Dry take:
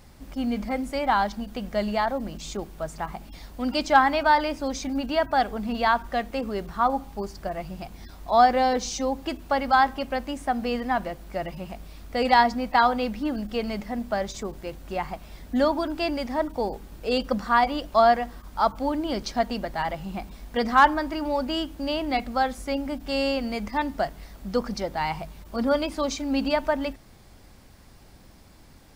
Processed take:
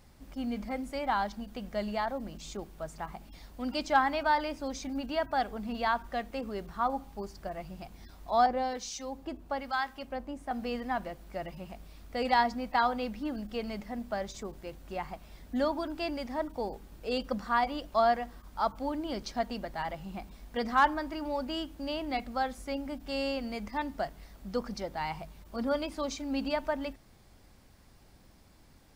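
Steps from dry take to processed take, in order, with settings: 8.46–10.51 s: harmonic tremolo 1.1 Hz, depth 70%, crossover 1.2 kHz; trim -7.5 dB

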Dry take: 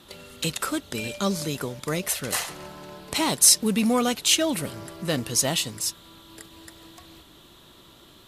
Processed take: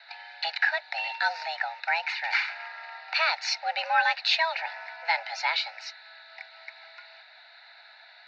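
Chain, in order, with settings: static phaser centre 2.9 kHz, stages 6; mistuned SSB +330 Hz 490–3500 Hz; trim +9 dB

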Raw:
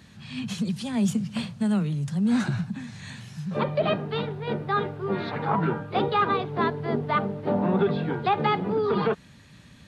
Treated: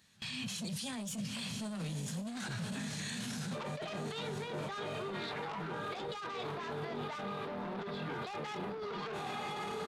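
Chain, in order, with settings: echo that smears into a reverb 1054 ms, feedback 48%, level -12 dB; saturation -23 dBFS, distortion -12 dB; bass shelf 390 Hz -7.5 dB; doubling 25 ms -11.5 dB; delay 988 ms -21 dB; compressor with a negative ratio -38 dBFS, ratio -1; gate with hold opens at -34 dBFS; treble shelf 3.6 kHz +10.5 dB; peak limiter -33 dBFS, peak gain reduction 14.5 dB; trim +1 dB

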